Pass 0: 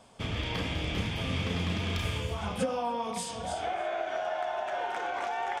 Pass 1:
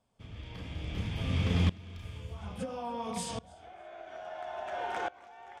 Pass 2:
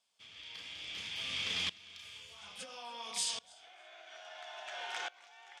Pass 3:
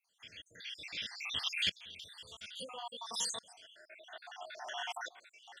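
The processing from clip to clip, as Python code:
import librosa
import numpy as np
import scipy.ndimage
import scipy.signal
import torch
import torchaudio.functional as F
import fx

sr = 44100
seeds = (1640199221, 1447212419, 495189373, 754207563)

y1 = fx.low_shelf(x, sr, hz=190.0, db=10.0)
y1 = fx.tremolo_decay(y1, sr, direction='swelling', hz=0.59, depth_db=23)
y2 = fx.bandpass_q(y1, sr, hz=3900.0, q=0.87)
y2 = fx.high_shelf(y2, sr, hz=3100.0, db=9.0)
y2 = y2 * 10.0 ** (2.5 / 20.0)
y3 = fx.spec_dropout(y2, sr, seeds[0], share_pct=67)
y3 = y3 * 10.0 ** (5.0 / 20.0)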